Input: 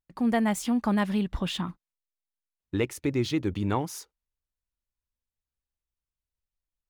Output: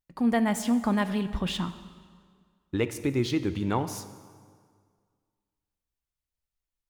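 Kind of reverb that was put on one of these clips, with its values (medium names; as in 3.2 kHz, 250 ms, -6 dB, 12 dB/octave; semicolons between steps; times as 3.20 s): plate-style reverb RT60 1.9 s, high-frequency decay 0.8×, DRR 11 dB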